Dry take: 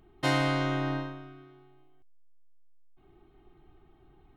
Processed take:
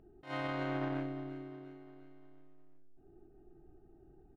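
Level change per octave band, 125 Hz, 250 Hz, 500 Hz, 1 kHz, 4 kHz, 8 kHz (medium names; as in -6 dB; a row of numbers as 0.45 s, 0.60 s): -11.0 dB, -6.5 dB, -7.0 dB, -9.0 dB, -15.0 dB, under -20 dB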